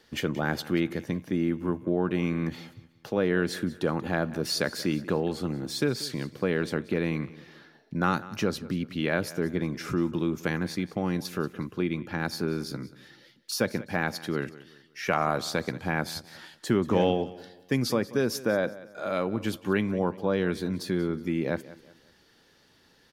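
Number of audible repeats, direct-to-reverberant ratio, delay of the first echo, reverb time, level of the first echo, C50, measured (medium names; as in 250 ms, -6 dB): 2, no reverb, 185 ms, no reverb, -18.0 dB, no reverb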